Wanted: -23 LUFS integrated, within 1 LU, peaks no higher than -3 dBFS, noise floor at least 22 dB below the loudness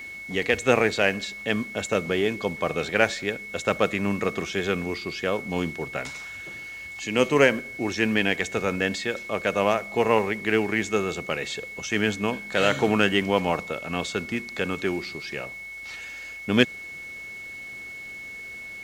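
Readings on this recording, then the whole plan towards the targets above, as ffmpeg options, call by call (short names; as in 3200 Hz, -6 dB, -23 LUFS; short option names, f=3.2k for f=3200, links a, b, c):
steady tone 2200 Hz; tone level -36 dBFS; loudness -25.5 LUFS; peak -4.0 dBFS; loudness target -23.0 LUFS
-> -af "bandreject=f=2.2k:w=30"
-af "volume=2.5dB,alimiter=limit=-3dB:level=0:latency=1"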